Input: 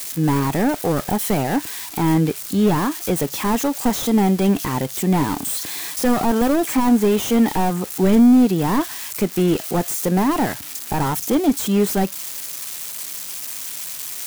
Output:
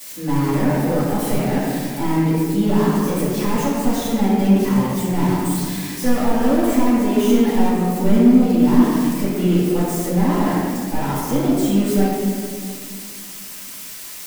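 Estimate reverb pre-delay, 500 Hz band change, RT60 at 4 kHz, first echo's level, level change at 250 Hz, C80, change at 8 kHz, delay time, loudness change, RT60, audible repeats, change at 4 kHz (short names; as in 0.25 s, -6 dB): 3 ms, +0.5 dB, 1.2 s, none, +1.5 dB, -0.5 dB, -4.0 dB, none, +1.0 dB, 2.0 s, none, -2.5 dB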